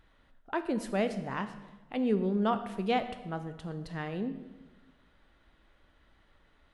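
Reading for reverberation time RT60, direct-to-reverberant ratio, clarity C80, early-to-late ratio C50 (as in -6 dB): 1.2 s, 9.5 dB, 13.0 dB, 11.5 dB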